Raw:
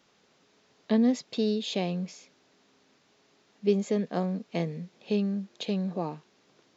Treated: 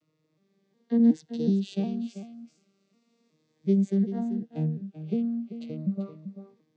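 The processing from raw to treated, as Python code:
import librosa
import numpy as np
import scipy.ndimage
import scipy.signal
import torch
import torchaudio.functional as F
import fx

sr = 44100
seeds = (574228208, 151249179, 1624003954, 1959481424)

y = fx.vocoder_arp(x, sr, chord='major triad', root=51, every_ms=366)
y = fx.peak_eq(y, sr, hz=140.0, db=2.0, octaves=2.6)
y = fx.notch(y, sr, hz=970.0, q=9.6)
y = fx.high_shelf(y, sr, hz=3300.0, db=10.0, at=(1.0, 4.07))
y = y + 10.0 ** (-11.5 / 20.0) * np.pad(y, (int(388 * sr / 1000.0), 0))[:len(y)]
y = fx.notch_cascade(y, sr, direction='falling', hz=0.33)
y = y * librosa.db_to_amplitude(1.0)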